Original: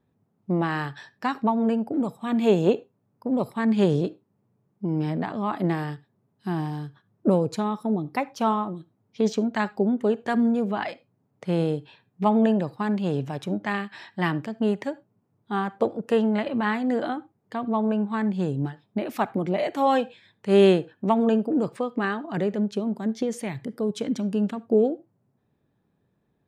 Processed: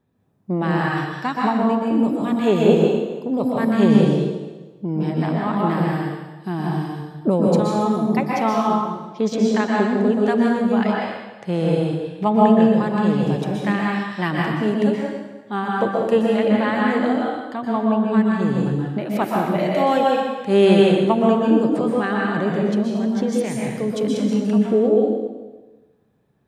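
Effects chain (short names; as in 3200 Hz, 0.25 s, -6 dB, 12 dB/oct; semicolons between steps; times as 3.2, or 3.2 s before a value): plate-style reverb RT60 1.2 s, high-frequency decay 0.95×, pre-delay 0.11 s, DRR -3 dB; gain +1.5 dB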